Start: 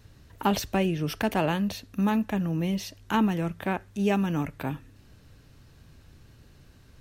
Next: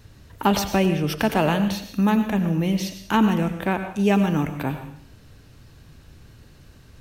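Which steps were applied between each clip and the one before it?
plate-style reverb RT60 0.58 s, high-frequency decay 1×, pre-delay 80 ms, DRR 8.5 dB; trim +5 dB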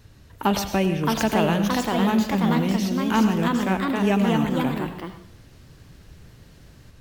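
ever faster or slower copies 668 ms, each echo +2 st, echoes 2; trim -2 dB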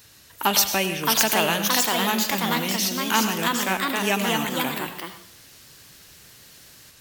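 tilt EQ +4 dB/octave; trim +1.5 dB

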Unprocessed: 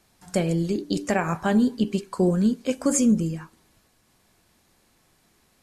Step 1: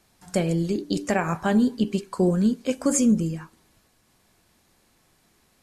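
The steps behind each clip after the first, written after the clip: no audible change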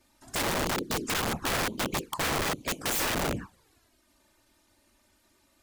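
whisper effect; touch-sensitive flanger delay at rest 3.4 ms, full sweep at -21.5 dBFS; integer overflow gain 23.5 dB

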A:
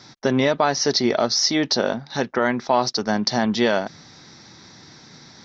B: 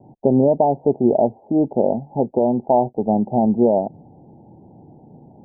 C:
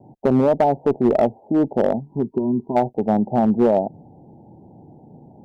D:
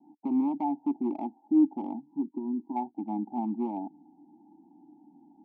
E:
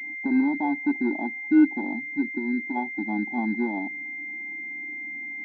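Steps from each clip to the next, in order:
steep low-pass 870 Hz 96 dB/octave; trim +4.5 dB
time-frequency box 2.00–2.76 s, 440–930 Hz -18 dB; one-sided clip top -12 dBFS, bottom -7.5 dBFS
vowel filter u; static phaser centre 440 Hz, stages 6
class-D stage that switches slowly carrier 2.1 kHz; trim +4.5 dB

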